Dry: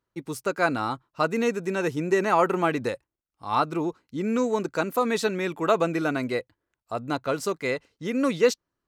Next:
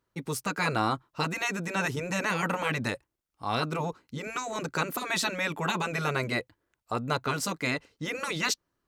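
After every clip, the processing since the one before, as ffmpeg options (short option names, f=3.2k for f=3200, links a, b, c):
-af "afftfilt=real='re*lt(hypot(re,im),0.224)':imag='im*lt(hypot(re,im),0.224)':win_size=1024:overlap=0.75,volume=3.5dB"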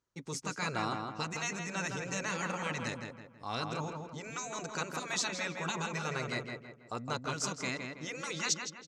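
-filter_complex "[0:a]lowpass=f=6.6k:t=q:w=3.1,asplit=2[a][b];[b]adelay=163,lowpass=f=2.7k:p=1,volume=-4dB,asplit=2[c][d];[d]adelay=163,lowpass=f=2.7k:p=1,volume=0.43,asplit=2[e][f];[f]adelay=163,lowpass=f=2.7k:p=1,volume=0.43,asplit=2[g][h];[h]adelay=163,lowpass=f=2.7k:p=1,volume=0.43,asplit=2[i][j];[j]adelay=163,lowpass=f=2.7k:p=1,volume=0.43[k];[a][c][e][g][i][k]amix=inputs=6:normalize=0,volume=-8.5dB"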